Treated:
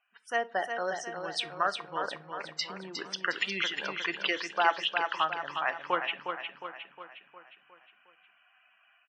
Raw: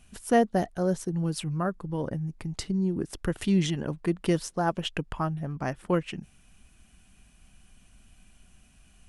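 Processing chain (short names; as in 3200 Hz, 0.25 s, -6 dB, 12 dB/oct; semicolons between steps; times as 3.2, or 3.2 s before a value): HPF 1200 Hz 12 dB/oct; low-pass opened by the level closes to 1600 Hz, open at -32 dBFS; 2.91–5.16 high shelf 2400 Hz +10.5 dB; loudest bins only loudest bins 64; AGC gain up to 11.5 dB; treble ducked by the level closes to 1600 Hz, closed at -21 dBFS; feedback echo 0.359 s, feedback 52%, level -6.5 dB; shoebox room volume 260 m³, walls furnished, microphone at 0.33 m; gain -2 dB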